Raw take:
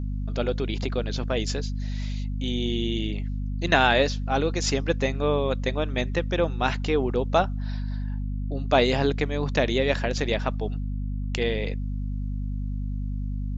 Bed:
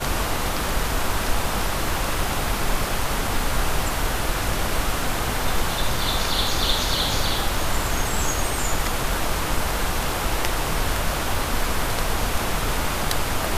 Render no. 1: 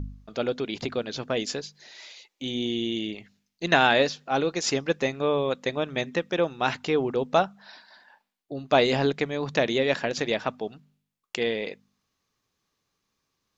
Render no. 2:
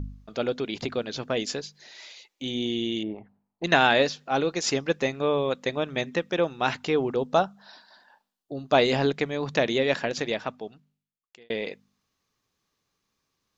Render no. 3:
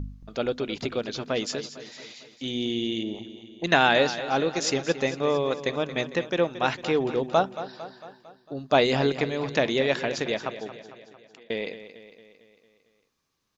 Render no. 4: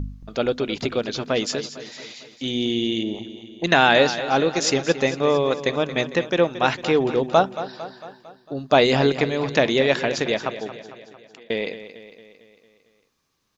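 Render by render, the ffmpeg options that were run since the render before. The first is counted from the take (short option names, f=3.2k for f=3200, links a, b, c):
-af "bandreject=f=50:t=h:w=4,bandreject=f=100:t=h:w=4,bandreject=f=150:t=h:w=4,bandreject=f=200:t=h:w=4,bandreject=f=250:t=h:w=4"
-filter_complex "[0:a]asettb=1/sr,asplit=3[a][b][c];[a]atrim=end=3.034[d];[b]atrim=start=3.03:end=3.64,asetpts=PTS-STARTPTS,afade=t=in:d=0.004:c=qsin,afade=t=out:st=0.606:d=0.004:c=qsin,lowpass=f=870:t=q:w=3.3[e];[c]atrim=start=3.636[f];[d][e]acrossfade=d=0.004:c1=hsin:c2=qsin[g];[g][f]acrossfade=d=0.004:c1=qsin:c2=hsin,asettb=1/sr,asplit=3[h][i][j];[h]atrim=end=7.164[k];[i]atrim=start=7.16:end=8.74,asetpts=PTS-STARTPTS,afade=t=in:d=0.004:c=qsin,afade=t=out:st=1.576:d=0.004:c=qsin,equalizer=f=2.2k:w=2.3:g=-8.5[l];[j]atrim=start=8.736[m];[k][l]acrossfade=d=0.004:c1=hsin:c2=qsin[n];[n][m]acrossfade=d=0.004:c1=qsin:c2=hsin,asplit=2[o][p];[o]atrim=end=11.5,asetpts=PTS-STARTPTS,afade=t=out:st=10:d=1.5[q];[p]atrim=start=11.5,asetpts=PTS-STARTPTS,afade=t=in:d=0.004:c=hsin[r];[q][r]concat=n=2:v=0:a=1"
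-af "aecho=1:1:226|452|678|904|1130|1356:0.224|0.125|0.0702|0.0393|0.022|0.0123"
-af "volume=5dB,alimiter=limit=-2dB:level=0:latency=1"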